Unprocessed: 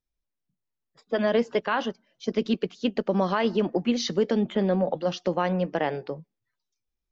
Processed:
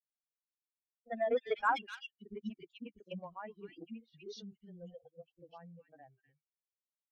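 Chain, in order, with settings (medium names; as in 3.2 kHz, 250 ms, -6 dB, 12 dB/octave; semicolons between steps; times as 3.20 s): expander on every frequency bin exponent 3; Doppler pass-by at 1.60 s, 20 m/s, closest 4.1 m; in parallel at -5 dB: saturation -31.5 dBFS, distortion -9 dB; on the sum: three bands offset in time lows, mids, highs 40/290 ms, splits 290/2200 Hz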